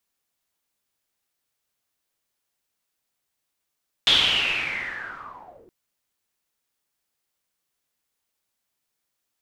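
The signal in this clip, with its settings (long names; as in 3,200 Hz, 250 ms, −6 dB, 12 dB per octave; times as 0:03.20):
filter sweep on noise white, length 1.62 s lowpass, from 3,500 Hz, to 330 Hz, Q 8.6, linear, gain ramp −27 dB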